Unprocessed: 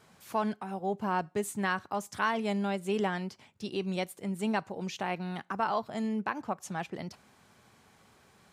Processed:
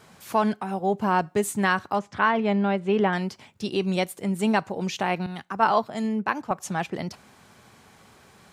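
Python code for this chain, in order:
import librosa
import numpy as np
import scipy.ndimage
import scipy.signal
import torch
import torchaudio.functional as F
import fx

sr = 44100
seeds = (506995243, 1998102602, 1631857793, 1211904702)

y = fx.lowpass(x, sr, hz=2700.0, slope=12, at=(1.99, 3.13))
y = fx.band_widen(y, sr, depth_pct=100, at=(5.26, 6.51))
y = F.gain(torch.from_numpy(y), 8.0).numpy()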